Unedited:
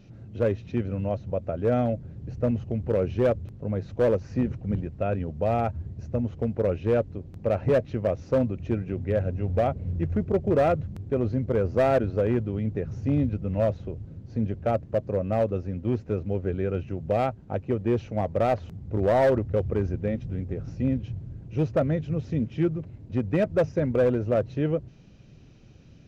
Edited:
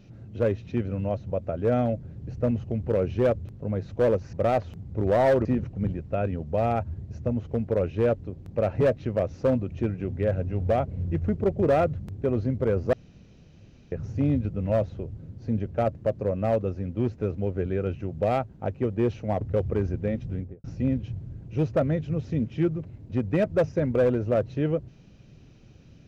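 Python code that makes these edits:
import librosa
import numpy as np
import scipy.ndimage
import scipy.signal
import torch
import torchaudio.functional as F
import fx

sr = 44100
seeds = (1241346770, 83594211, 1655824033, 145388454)

y = fx.studio_fade_out(x, sr, start_s=20.33, length_s=0.31)
y = fx.edit(y, sr, fx.room_tone_fill(start_s=11.81, length_s=0.99),
    fx.move(start_s=18.29, length_s=1.12, to_s=4.33), tone=tone)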